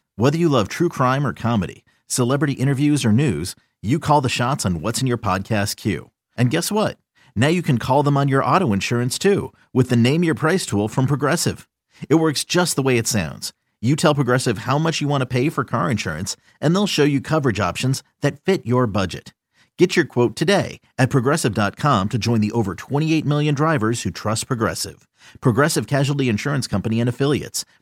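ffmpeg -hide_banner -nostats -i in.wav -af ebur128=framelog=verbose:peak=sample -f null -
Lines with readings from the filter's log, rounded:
Integrated loudness:
  I:         -19.7 LUFS
  Threshold: -30.0 LUFS
Loudness range:
  LRA:         2.2 LU
  Threshold: -40.0 LUFS
  LRA low:   -21.0 LUFS
  LRA high:  -18.8 LUFS
Sample peak:
  Peak:       -1.5 dBFS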